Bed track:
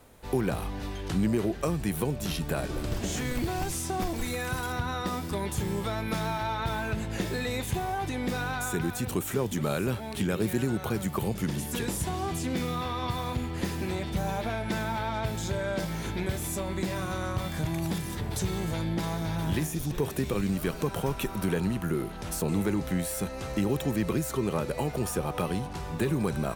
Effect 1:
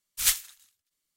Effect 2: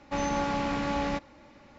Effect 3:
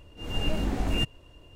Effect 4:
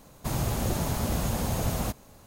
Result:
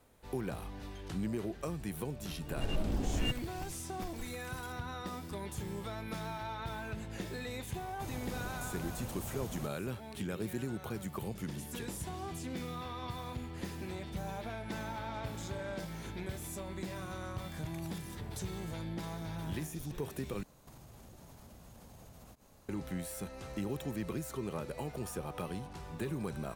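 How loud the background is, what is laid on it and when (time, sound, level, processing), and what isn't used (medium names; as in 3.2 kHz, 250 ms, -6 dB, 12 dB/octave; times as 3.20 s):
bed track -10 dB
2.27 s: add 3 -6 dB + local Wiener filter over 25 samples
7.75 s: add 4 -15 dB
14.58 s: add 2 -14 dB + peak limiter -28 dBFS
20.43 s: replace with 4 -9 dB + compression 10:1, threshold -42 dBFS
not used: 1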